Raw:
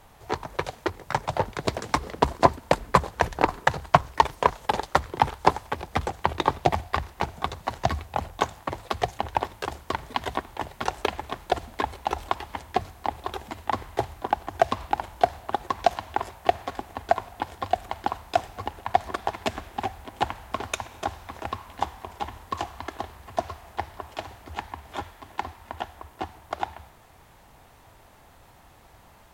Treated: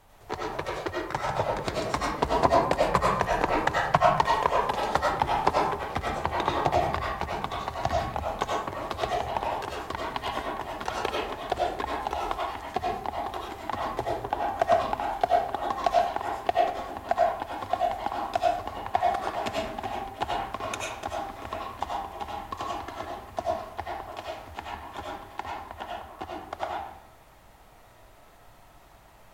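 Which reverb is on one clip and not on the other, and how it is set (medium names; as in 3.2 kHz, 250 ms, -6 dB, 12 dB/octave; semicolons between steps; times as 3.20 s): algorithmic reverb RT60 0.66 s, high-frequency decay 0.6×, pre-delay 55 ms, DRR -3.5 dB; trim -5.5 dB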